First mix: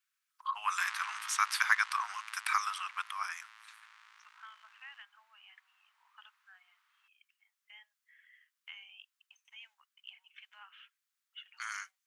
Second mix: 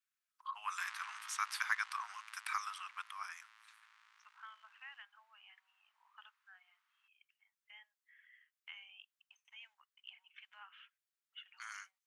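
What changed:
first voice -8.0 dB; second voice: add high shelf 3100 Hz -7 dB; background -7.5 dB

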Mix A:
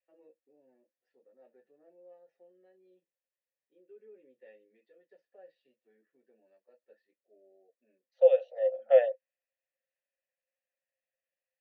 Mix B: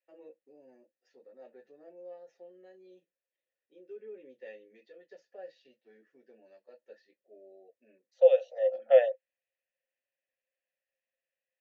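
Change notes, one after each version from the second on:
first voice +8.0 dB; master: remove air absorption 240 m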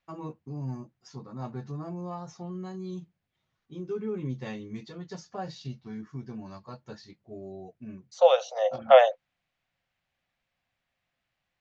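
first voice: remove HPF 260 Hz 24 dB/oct; master: remove vowel filter e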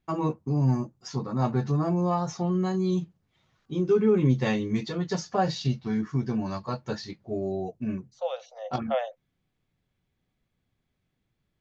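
first voice +11.5 dB; second voice -12.0 dB

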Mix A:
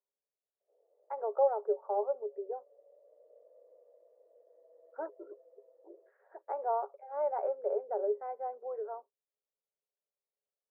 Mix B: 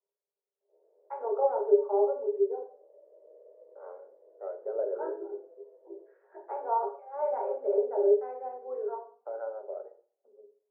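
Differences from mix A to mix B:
second voice: unmuted; reverb: on, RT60 0.45 s

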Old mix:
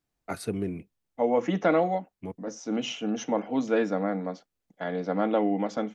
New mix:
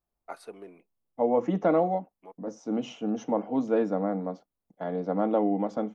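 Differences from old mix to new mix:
first voice: add BPF 750–6000 Hz; master: add band shelf 3400 Hz -10.5 dB 2.7 oct

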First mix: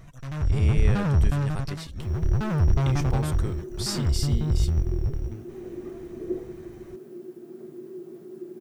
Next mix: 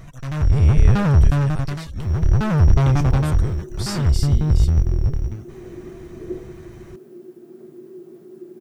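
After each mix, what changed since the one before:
first sound +7.0 dB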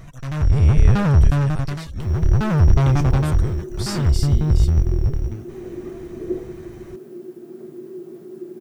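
second sound +4.5 dB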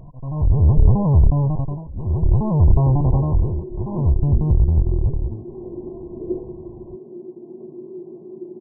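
master: add brick-wall FIR low-pass 1100 Hz

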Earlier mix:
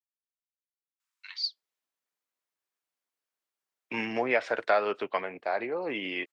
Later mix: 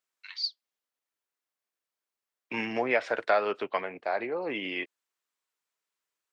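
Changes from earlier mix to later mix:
first voice: entry -1.00 s; second voice: entry -1.40 s

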